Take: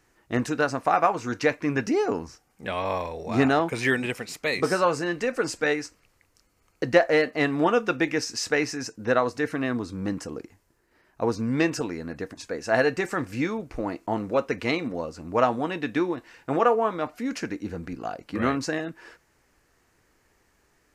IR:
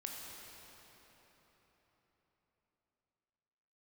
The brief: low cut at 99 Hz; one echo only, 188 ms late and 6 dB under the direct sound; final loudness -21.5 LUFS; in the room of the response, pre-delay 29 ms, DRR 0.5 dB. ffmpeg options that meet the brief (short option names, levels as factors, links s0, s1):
-filter_complex "[0:a]highpass=99,aecho=1:1:188:0.501,asplit=2[s0][s1];[1:a]atrim=start_sample=2205,adelay=29[s2];[s1][s2]afir=irnorm=-1:irlink=0,volume=1.06[s3];[s0][s3]amix=inputs=2:normalize=0,volume=1.19"